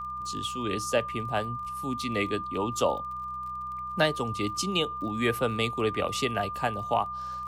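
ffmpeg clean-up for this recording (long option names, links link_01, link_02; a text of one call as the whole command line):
ffmpeg -i in.wav -af "adeclick=threshold=4,bandreject=frequency=63.1:width_type=h:width=4,bandreject=frequency=126.2:width_type=h:width=4,bandreject=frequency=189.3:width_type=h:width=4,bandreject=frequency=1200:width=30" out.wav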